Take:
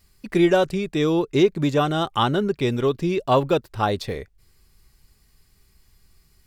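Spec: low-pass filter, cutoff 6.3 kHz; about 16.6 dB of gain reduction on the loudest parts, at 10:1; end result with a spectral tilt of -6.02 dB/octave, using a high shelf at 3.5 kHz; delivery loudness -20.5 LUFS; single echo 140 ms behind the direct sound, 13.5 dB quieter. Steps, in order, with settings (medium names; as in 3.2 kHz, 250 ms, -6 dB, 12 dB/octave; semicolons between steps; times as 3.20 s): low-pass 6.3 kHz; treble shelf 3.5 kHz -8.5 dB; compression 10:1, threshold -30 dBFS; delay 140 ms -13.5 dB; trim +14 dB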